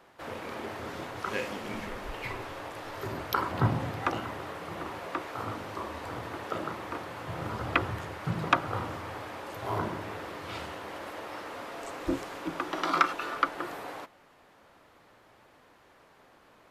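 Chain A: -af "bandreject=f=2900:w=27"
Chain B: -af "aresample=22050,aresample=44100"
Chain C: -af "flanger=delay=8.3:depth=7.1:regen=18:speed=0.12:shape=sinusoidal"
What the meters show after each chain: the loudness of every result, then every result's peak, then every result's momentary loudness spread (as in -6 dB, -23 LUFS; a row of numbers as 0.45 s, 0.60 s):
-34.0 LUFS, -34.0 LUFS, -37.5 LUFS; -7.0 dBFS, -7.5 dBFS, -11.5 dBFS; 12 LU, 12 LU, 12 LU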